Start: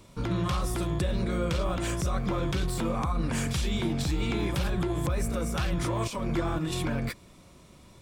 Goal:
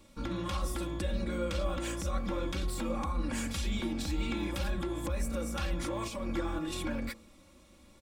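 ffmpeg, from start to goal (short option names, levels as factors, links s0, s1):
-af "aecho=1:1:3.6:0.79,bandreject=f=55.66:t=h:w=4,bandreject=f=111.32:t=h:w=4,bandreject=f=166.98:t=h:w=4,bandreject=f=222.64:t=h:w=4,bandreject=f=278.3:t=h:w=4,bandreject=f=333.96:t=h:w=4,bandreject=f=389.62:t=h:w=4,bandreject=f=445.28:t=h:w=4,bandreject=f=500.94:t=h:w=4,bandreject=f=556.6:t=h:w=4,bandreject=f=612.26:t=h:w=4,bandreject=f=667.92:t=h:w=4,bandreject=f=723.58:t=h:w=4,bandreject=f=779.24:t=h:w=4,bandreject=f=834.9:t=h:w=4,bandreject=f=890.56:t=h:w=4,bandreject=f=946.22:t=h:w=4,bandreject=f=1001.88:t=h:w=4,bandreject=f=1057.54:t=h:w=4,bandreject=f=1113.2:t=h:w=4,bandreject=f=1168.86:t=h:w=4,bandreject=f=1224.52:t=h:w=4,bandreject=f=1280.18:t=h:w=4,bandreject=f=1335.84:t=h:w=4,volume=0.473"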